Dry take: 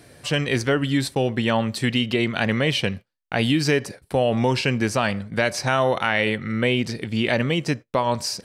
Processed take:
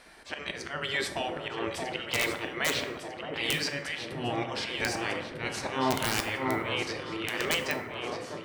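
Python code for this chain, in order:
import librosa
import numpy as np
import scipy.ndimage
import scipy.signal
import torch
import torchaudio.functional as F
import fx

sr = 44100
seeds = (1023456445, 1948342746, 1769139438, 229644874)

p1 = fx.fade_out_tail(x, sr, length_s=0.94)
p2 = fx.lowpass(p1, sr, hz=2700.0, slope=6)
p3 = fx.spec_gate(p2, sr, threshold_db=-10, keep='weak')
p4 = fx.rider(p3, sr, range_db=5, speed_s=2.0)
p5 = p3 + F.gain(torch.from_numpy(p4), -2.0).numpy()
p6 = fx.auto_swell(p5, sr, attack_ms=192.0)
p7 = p6 + fx.echo_alternate(p6, sr, ms=624, hz=1200.0, feedback_pct=67, wet_db=-4, dry=0)
p8 = (np.mod(10.0 ** (13.5 / 20.0) * p7 + 1.0, 2.0) - 1.0) / 10.0 ** (13.5 / 20.0)
p9 = fx.rev_plate(p8, sr, seeds[0], rt60_s=1.1, hf_ratio=0.5, predelay_ms=0, drr_db=6.0)
y = F.gain(torch.from_numpy(p9), -3.5).numpy()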